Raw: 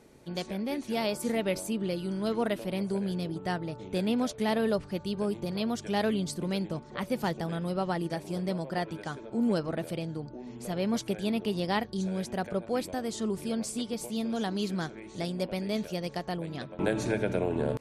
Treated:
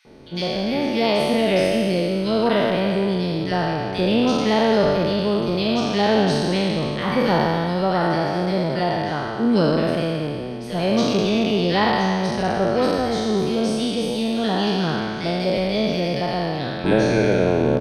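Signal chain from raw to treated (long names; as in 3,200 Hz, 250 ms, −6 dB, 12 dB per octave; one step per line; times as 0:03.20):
peak hold with a decay on every bin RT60 2.31 s
Savitzky-Golay smoothing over 15 samples
multiband delay without the direct sound highs, lows 50 ms, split 1,700 Hz
level +8 dB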